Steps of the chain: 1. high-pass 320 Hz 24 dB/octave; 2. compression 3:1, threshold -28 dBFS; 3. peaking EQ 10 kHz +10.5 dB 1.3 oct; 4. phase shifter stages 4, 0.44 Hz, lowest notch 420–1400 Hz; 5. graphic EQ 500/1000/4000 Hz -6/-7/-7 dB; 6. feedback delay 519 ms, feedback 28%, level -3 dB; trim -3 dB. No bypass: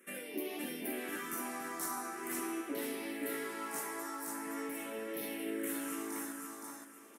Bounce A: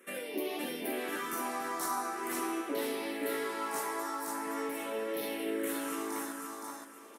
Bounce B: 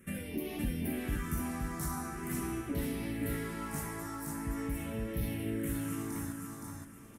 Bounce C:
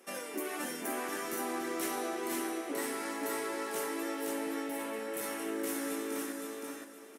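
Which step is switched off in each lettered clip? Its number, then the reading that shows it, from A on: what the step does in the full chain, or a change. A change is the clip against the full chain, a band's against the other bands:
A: 5, 1 kHz band +4.5 dB; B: 1, 125 Hz band +26.0 dB; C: 4, 125 Hz band -3.0 dB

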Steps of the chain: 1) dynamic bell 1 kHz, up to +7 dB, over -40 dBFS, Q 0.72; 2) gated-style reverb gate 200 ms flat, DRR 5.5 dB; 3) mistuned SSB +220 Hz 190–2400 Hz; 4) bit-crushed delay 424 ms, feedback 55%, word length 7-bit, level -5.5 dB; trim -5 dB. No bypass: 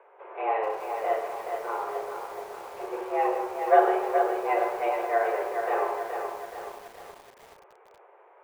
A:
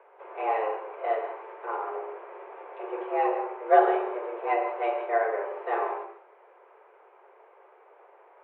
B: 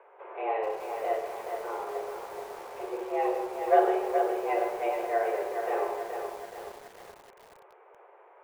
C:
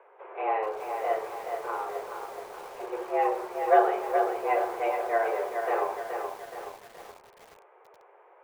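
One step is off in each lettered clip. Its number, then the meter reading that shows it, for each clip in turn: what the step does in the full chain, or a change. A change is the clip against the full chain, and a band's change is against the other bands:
4, momentary loudness spread change +1 LU; 1, loudness change -2.5 LU; 2, loudness change -1.0 LU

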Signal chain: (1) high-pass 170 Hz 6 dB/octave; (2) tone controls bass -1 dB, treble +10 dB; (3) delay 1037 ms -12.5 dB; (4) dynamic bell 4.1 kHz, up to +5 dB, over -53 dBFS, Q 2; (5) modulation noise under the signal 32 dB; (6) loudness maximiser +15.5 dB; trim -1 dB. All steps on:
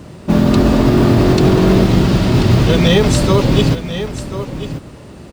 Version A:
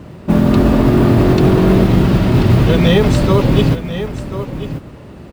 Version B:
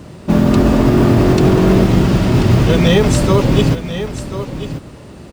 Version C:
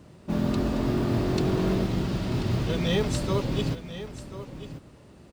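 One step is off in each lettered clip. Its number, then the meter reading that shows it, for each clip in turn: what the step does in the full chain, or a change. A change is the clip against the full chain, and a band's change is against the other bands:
2, 8 kHz band -7.0 dB; 4, 4 kHz band -3.0 dB; 6, crest factor change +3.0 dB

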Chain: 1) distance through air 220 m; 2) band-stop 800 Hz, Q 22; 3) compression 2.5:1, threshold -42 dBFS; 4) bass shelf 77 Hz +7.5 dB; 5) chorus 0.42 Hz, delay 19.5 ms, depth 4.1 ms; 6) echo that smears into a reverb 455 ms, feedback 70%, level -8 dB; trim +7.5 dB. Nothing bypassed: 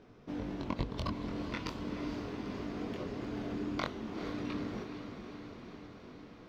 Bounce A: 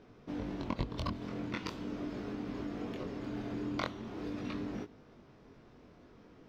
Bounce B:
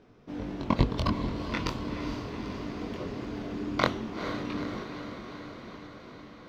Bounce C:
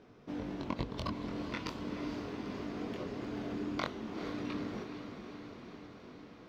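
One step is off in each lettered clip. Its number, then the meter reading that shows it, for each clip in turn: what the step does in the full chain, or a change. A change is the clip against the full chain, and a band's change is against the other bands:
6, echo-to-direct -5.0 dB to none; 3, mean gain reduction 4.0 dB; 4, 125 Hz band -2.0 dB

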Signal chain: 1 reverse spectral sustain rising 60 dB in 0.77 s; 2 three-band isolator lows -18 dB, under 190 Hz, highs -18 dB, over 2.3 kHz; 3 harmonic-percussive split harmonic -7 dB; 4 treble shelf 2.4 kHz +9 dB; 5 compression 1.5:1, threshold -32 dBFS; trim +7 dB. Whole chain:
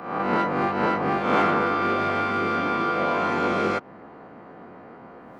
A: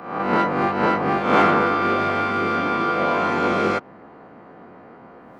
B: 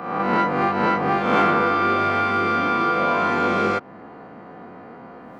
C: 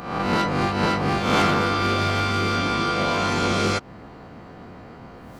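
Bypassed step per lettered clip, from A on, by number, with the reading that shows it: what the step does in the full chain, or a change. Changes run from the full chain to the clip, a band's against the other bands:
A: 5, loudness change +3.5 LU; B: 3, loudness change +3.5 LU; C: 2, 4 kHz band +9.0 dB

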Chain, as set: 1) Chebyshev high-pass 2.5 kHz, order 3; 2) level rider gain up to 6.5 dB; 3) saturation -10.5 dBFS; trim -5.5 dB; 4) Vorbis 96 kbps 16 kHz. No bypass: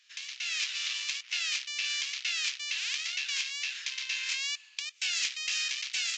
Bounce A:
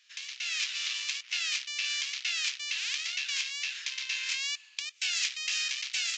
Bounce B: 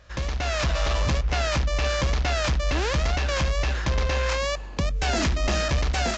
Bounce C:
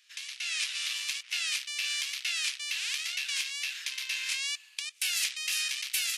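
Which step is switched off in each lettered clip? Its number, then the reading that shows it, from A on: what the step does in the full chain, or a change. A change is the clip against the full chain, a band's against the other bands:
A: 3, distortion -30 dB; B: 1, 1 kHz band +25.0 dB; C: 4, 8 kHz band +2.0 dB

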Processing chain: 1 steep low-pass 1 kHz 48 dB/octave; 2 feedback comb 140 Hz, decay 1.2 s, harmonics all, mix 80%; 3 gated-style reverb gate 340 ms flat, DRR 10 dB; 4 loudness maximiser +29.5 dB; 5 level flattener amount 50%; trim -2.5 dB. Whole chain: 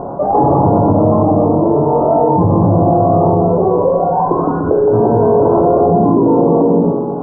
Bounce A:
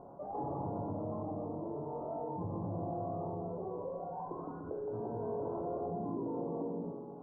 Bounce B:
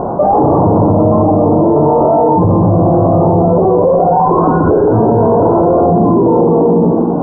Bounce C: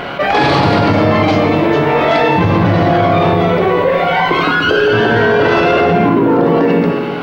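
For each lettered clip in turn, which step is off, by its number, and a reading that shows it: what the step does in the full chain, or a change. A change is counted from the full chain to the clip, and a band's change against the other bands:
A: 4, momentary loudness spread change +1 LU; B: 2, crest factor change -2.0 dB; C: 1, momentary loudness spread change -1 LU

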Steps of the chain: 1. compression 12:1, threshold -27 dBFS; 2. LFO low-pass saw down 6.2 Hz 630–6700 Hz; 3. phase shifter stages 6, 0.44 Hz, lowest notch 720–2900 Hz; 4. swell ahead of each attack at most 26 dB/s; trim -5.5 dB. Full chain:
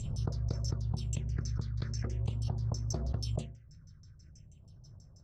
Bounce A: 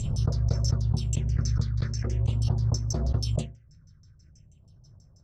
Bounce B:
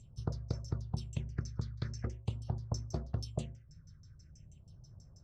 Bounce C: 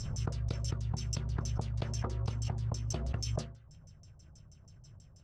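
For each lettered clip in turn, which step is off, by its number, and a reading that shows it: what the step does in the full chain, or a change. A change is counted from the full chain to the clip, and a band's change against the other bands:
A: 1, mean gain reduction 4.0 dB; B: 4, crest factor change +4.5 dB; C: 3, 125 Hz band -3.5 dB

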